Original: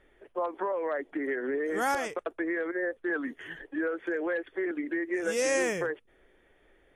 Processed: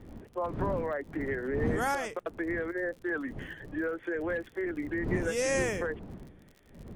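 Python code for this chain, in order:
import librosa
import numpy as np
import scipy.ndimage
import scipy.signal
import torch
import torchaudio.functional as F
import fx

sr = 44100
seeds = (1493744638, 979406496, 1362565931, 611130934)

y = fx.dmg_wind(x, sr, seeds[0], corner_hz=250.0, level_db=-38.0)
y = fx.dmg_crackle(y, sr, seeds[1], per_s=50.0, level_db=-42.0)
y = y * librosa.db_to_amplitude(-2.0)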